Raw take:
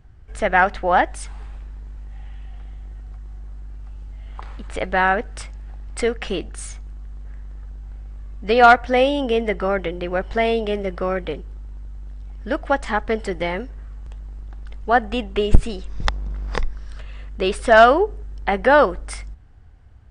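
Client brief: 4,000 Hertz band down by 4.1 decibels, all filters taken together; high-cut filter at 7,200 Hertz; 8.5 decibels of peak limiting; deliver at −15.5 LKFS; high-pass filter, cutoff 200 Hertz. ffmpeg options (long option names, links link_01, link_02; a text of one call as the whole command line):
ffmpeg -i in.wav -af "highpass=200,lowpass=7200,equalizer=frequency=4000:width_type=o:gain=-6,volume=7.5dB,alimiter=limit=-1.5dB:level=0:latency=1" out.wav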